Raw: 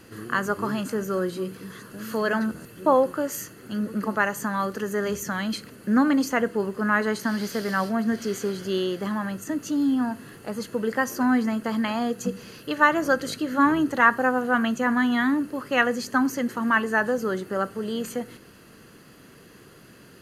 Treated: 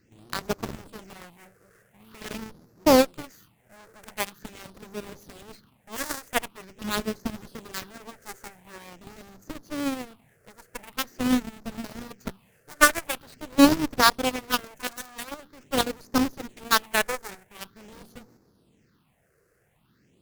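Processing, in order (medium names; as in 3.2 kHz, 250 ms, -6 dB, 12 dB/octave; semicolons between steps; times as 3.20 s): square wave that keeps the level; phase shifter stages 6, 0.45 Hz, lowest notch 230–3000 Hz; Chebyshev shaper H 4 -17 dB, 7 -16 dB, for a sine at -3.5 dBFS; trim +1 dB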